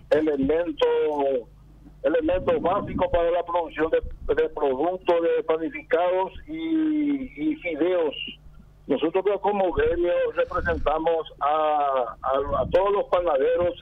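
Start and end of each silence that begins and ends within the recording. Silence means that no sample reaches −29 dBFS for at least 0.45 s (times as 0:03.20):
0:01.40–0:02.04
0:08.30–0:08.90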